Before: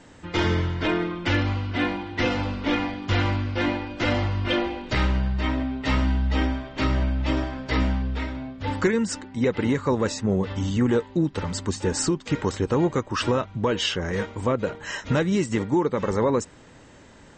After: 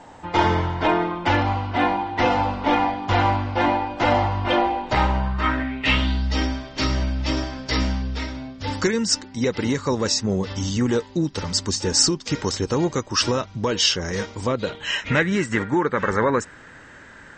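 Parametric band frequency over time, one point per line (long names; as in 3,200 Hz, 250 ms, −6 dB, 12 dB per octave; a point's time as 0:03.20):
parametric band +15 dB 0.85 octaves
0:05.18 830 Hz
0:06.31 5,400 Hz
0:14.41 5,400 Hz
0:15.36 1,600 Hz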